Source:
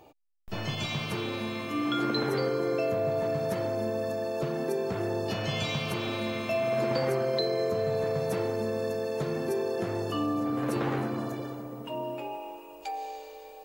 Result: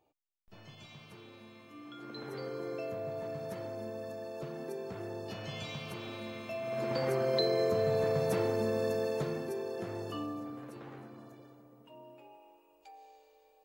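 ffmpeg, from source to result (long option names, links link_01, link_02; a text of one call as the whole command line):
ffmpeg -i in.wav -af "volume=-1dB,afade=type=in:start_time=1.99:duration=0.61:silence=0.334965,afade=type=in:start_time=6.62:duration=0.81:silence=0.334965,afade=type=out:start_time=9.05:duration=0.43:silence=0.446684,afade=type=out:start_time=10.13:duration=0.58:silence=0.298538" out.wav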